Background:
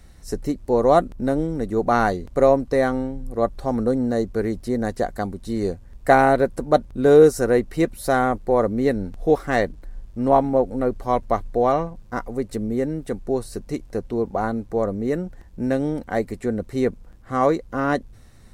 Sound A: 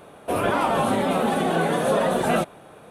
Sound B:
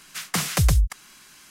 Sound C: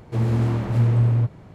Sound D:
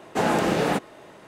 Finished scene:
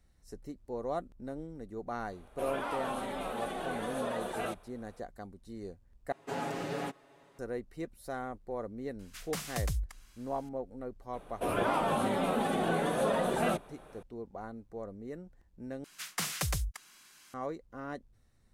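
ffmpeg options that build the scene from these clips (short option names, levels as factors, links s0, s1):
-filter_complex "[1:a]asplit=2[s0][s1];[2:a]asplit=2[s2][s3];[0:a]volume=0.106[s4];[s0]equalizer=f=73:w=0.33:g=-12.5[s5];[4:a]aecho=1:1:7.2:0.88[s6];[s3]lowshelf=f=340:g=-7.5[s7];[s4]asplit=3[s8][s9][s10];[s8]atrim=end=6.124[s11];[s6]atrim=end=1.27,asetpts=PTS-STARTPTS,volume=0.15[s12];[s9]atrim=start=7.386:end=15.844[s13];[s7]atrim=end=1.5,asetpts=PTS-STARTPTS,volume=0.376[s14];[s10]atrim=start=17.336[s15];[s5]atrim=end=2.9,asetpts=PTS-STARTPTS,volume=0.224,afade=t=in:d=0.004:c=hsin,afade=t=out:st=2.896:d=0.004:c=hsin,adelay=2100[s16];[s2]atrim=end=1.5,asetpts=PTS-STARTPTS,volume=0.188,afade=t=in:d=0.004:c=hsin,afade=t=out:st=1.496:d=0.004:c=hsin,adelay=8990[s17];[s1]atrim=end=2.9,asetpts=PTS-STARTPTS,volume=0.376,afade=t=in:d=0.004:c=hsin,afade=t=out:st=2.896:d=0.004:c=hsin,adelay=11130[s18];[s11][s12]acrossfade=d=0.004:c1=hsin:c2=hsin[s19];[s19][s13]acrossfade=d=0.004:c1=hsin:c2=hsin[s20];[s20][s14]acrossfade=d=0.004:c1=hsin:c2=hsin[s21];[s21][s15]acrossfade=d=0.004:c1=hsin:c2=hsin[s22];[s22][s16][s17][s18]amix=inputs=4:normalize=0"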